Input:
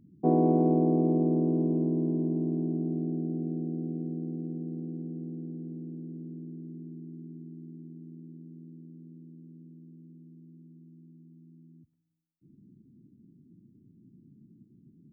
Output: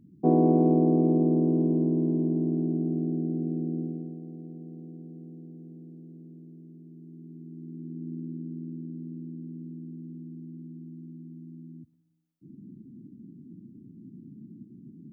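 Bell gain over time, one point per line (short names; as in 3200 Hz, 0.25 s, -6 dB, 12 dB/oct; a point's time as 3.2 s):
bell 250 Hz 2.1 oct
3.8 s +3 dB
4.2 s -7 dB
6.83 s -7 dB
7.45 s +0.5 dB
8.12 s +11.5 dB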